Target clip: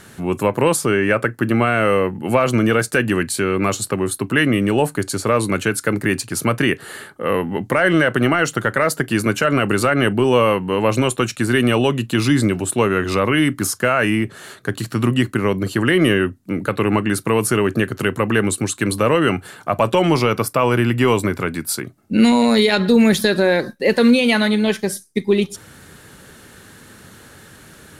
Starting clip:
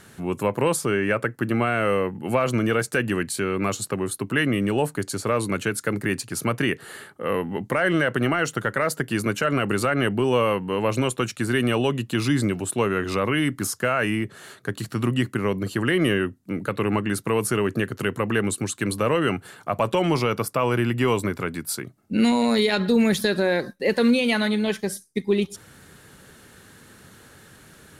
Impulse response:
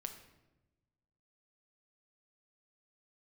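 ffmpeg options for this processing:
-filter_complex "[0:a]asplit=2[link_01][link_02];[1:a]atrim=start_sample=2205,atrim=end_sample=3969,asetrate=79380,aresample=44100[link_03];[link_02][link_03]afir=irnorm=-1:irlink=0,volume=-1.5dB[link_04];[link_01][link_04]amix=inputs=2:normalize=0,volume=3.5dB"

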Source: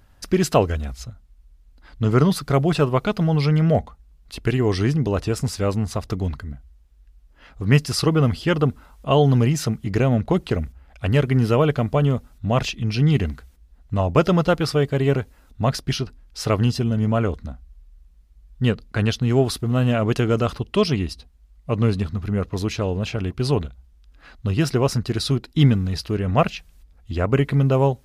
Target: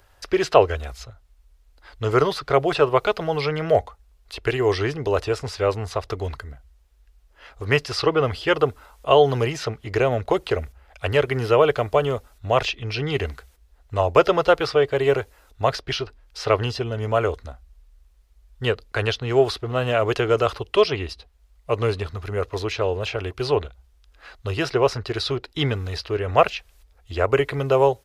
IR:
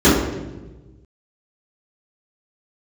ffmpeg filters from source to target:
-filter_complex "[0:a]acrossover=split=350|1300|4800[link_01][link_02][link_03][link_04];[link_04]acompressor=threshold=-52dB:ratio=6[link_05];[link_01][link_02][link_03][link_05]amix=inputs=4:normalize=0,firequalizer=gain_entry='entry(100,0);entry(190,-13);entry(400,8)':delay=0.05:min_phase=1,volume=-4.5dB"

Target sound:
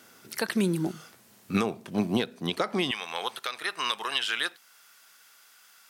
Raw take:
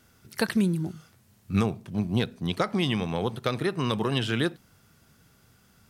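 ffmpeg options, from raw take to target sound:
ffmpeg -i in.wav -af "asetnsamples=nb_out_samples=441:pad=0,asendcmd='2.91 highpass f 1200',highpass=290,alimiter=limit=-22dB:level=0:latency=1:release=386,volume=8dB" out.wav

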